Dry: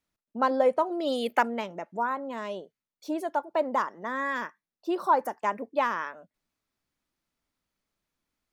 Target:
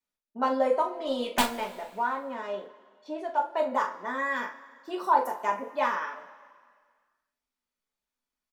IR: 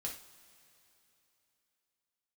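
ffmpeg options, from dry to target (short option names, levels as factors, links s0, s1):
-filter_complex "[0:a]equalizer=f=130:t=o:w=2.5:g=-10.5,agate=range=0.501:threshold=0.00316:ratio=16:detection=peak,asettb=1/sr,asplit=3[s0][s1][s2];[s0]atrim=end=0.924[s3];[s1]atrim=start=0.92:end=3.41,asetpts=PTS-STARTPTS,afade=t=in:d=0.004:c=qsin,afade=t=out:st=2.486:d=0.004:c=qsin,adynamicsmooth=sensitivity=5.5:basefreq=3600[s4];[s2]atrim=start=3.406[s5];[s3][s4]acrossfade=d=0.004:c1=hsin:c2=qsin[s6];[s6][s5]acrossfade=d=0.004:c1=qsin:c2=hsin,aeval=exprs='(mod(4.22*val(0)+1,2)-1)/4.22':c=same,asplit=2[s7][s8];[s8]adelay=41,volume=0.316[s9];[s7][s9]amix=inputs=2:normalize=0[s10];[1:a]atrim=start_sample=2205,asetrate=79380,aresample=44100[s11];[s10][s11]afir=irnorm=-1:irlink=0,volume=2.11"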